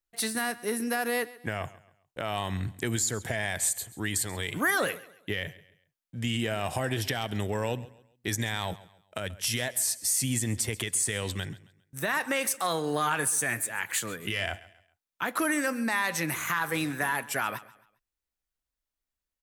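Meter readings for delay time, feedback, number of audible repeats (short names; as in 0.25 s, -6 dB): 0.135 s, 35%, 2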